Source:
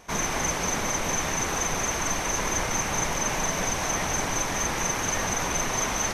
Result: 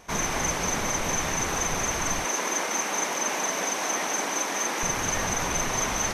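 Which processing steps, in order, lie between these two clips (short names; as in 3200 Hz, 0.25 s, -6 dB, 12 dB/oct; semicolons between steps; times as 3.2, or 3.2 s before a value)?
2.26–4.83 HPF 240 Hz 24 dB/oct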